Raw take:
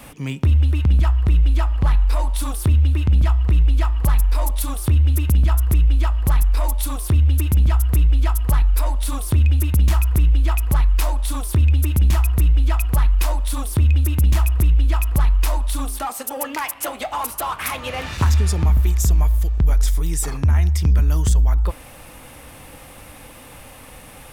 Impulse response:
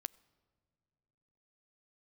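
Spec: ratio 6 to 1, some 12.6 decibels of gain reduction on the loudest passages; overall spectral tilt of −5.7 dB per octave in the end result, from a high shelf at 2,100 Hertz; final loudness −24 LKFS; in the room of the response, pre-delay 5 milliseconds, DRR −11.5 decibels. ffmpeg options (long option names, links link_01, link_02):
-filter_complex "[0:a]highshelf=frequency=2100:gain=-8.5,acompressor=threshold=-26dB:ratio=6,asplit=2[link_01][link_02];[1:a]atrim=start_sample=2205,adelay=5[link_03];[link_02][link_03]afir=irnorm=-1:irlink=0,volume=15dB[link_04];[link_01][link_04]amix=inputs=2:normalize=0,volume=-5dB"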